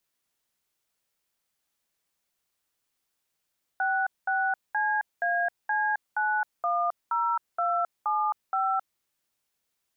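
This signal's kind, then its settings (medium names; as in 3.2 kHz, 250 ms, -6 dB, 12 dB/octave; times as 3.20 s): DTMF "66CAC910275", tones 266 ms, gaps 207 ms, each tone -26 dBFS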